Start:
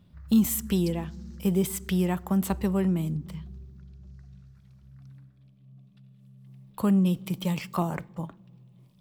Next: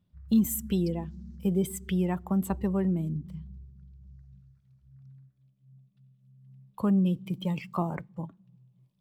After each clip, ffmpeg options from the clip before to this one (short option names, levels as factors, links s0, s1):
-af "afftdn=nr=13:nf=-37,volume=0.794"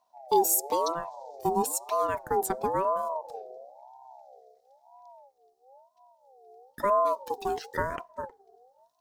-af "highshelf=f=3800:t=q:w=3:g=7.5,aeval=exprs='val(0)*sin(2*PI*710*n/s+710*0.2/1*sin(2*PI*1*n/s))':c=same,volume=1.33"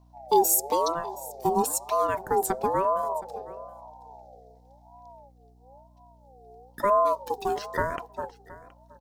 -af "aeval=exprs='val(0)+0.00126*(sin(2*PI*60*n/s)+sin(2*PI*2*60*n/s)/2+sin(2*PI*3*60*n/s)/3+sin(2*PI*4*60*n/s)/4+sin(2*PI*5*60*n/s)/5)':c=same,aecho=1:1:721:0.106,volume=1.33"